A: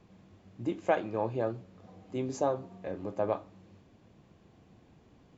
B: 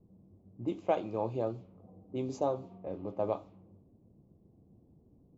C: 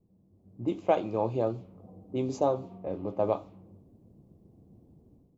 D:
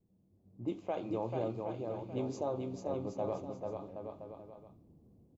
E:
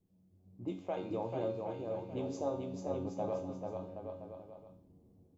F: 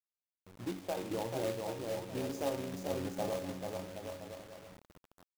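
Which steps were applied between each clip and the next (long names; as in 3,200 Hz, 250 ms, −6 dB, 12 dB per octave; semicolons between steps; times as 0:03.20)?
parametric band 1,700 Hz −14.5 dB 0.49 octaves; low-pass that shuts in the quiet parts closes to 370 Hz, open at −29 dBFS; level −1.5 dB
automatic gain control gain up to 11 dB; level −6 dB
brickwall limiter −19.5 dBFS, peak gain reduction 7.5 dB; on a send: bouncing-ball delay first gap 440 ms, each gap 0.75×, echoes 5; on the sum: level −6.5 dB
tuned comb filter 92 Hz, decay 0.56 s, harmonics all, mix 80%; level +8.5 dB
log-companded quantiser 4 bits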